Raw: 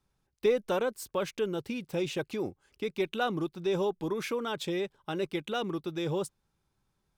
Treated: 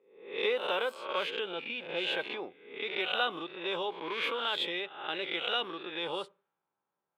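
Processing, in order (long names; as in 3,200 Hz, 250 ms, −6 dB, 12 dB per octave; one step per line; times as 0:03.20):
peak hold with a rise ahead of every peak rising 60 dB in 0.67 s
Bessel high-pass filter 700 Hz, order 2
high shelf with overshoot 4,400 Hz −10.5 dB, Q 3
convolution reverb RT60 0.35 s, pre-delay 3 ms, DRR 16.5 dB
low-pass that shuts in the quiet parts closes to 930 Hz, open at −28 dBFS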